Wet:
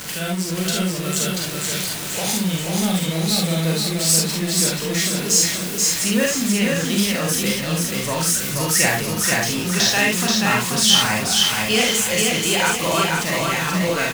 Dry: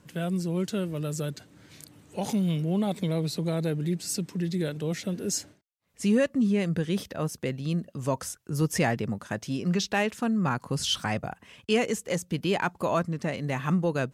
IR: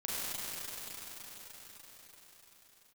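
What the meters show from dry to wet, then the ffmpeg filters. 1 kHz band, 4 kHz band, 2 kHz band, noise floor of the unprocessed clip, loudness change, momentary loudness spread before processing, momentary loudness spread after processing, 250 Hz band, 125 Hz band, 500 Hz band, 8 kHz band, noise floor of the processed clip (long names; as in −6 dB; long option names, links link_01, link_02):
+9.0 dB, +17.0 dB, +14.0 dB, −63 dBFS, +10.5 dB, 7 LU, 6 LU, +5.5 dB, +4.5 dB, +5.5 dB, +19.0 dB, −26 dBFS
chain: -filter_complex "[0:a]aeval=exprs='val(0)+0.5*0.0251*sgn(val(0))':channel_layout=same,tiltshelf=frequency=1200:gain=-7,aecho=1:1:482|964|1446|1928|2410|2892:0.708|0.319|0.143|0.0645|0.029|0.0131[link_01];[1:a]atrim=start_sample=2205,atrim=end_sample=3528[link_02];[link_01][link_02]afir=irnorm=-1:irlink=0,volume=7.5dB"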